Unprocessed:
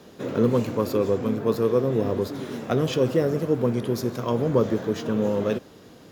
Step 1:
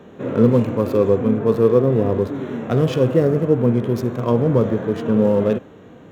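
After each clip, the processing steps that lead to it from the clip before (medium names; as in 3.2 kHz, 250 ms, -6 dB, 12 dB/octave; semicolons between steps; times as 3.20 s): local Wiener filter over 9 samples; harmonic-percussive split percussive -9 dB; trim +8.5 dB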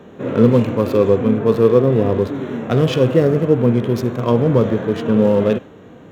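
dynamic bell 3.2 kHz, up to +5 dB, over -40 dBFS, Q 0.79; trim +2 dB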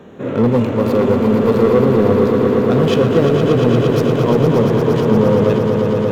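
saturation -8 dBFS, distortion -16 dB; echo with a slow build-up 116 ms, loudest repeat 5, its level -8 dB; trim +1 dB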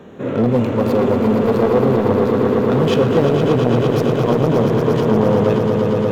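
transformer saturation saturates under 410 Hz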